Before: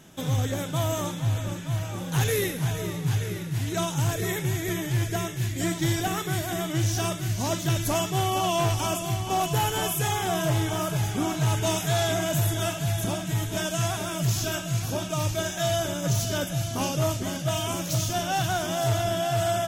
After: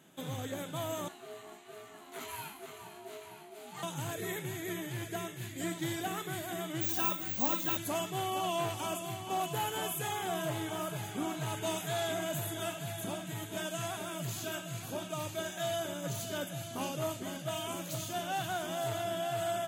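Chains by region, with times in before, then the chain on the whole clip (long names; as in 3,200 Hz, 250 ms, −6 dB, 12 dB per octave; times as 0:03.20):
0:01.08–0:03.83: high-pass filter 320 Hz 6 dB per octave + chorus effect 2.1 Hz, delay 18.5 ms, depth 2.2 ms + ring modulation 530 Hz
0:06.81–0:07.77: dynamic equaliser 970 Hz, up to +6 dB, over −46 dBFS, Q 3.3 + comb filter 3.8 ms, depth 79% + bad sample-rate conversion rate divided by 2×, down filtered, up zero stuff
whole clip: high-pass filter 180 Hz 12 dB per octave; parametric band 5,500 Hz −12 dB 0.28 octaves; level −8 dB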